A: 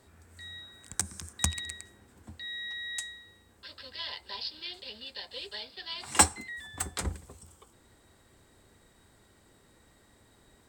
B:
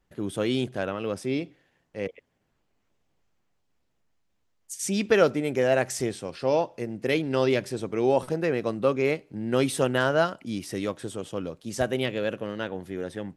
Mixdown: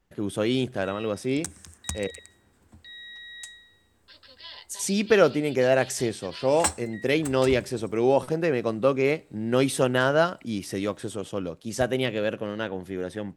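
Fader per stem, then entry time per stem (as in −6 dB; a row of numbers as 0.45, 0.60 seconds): −4.5, +1.5 decibels; 0.45, 0.00 seconds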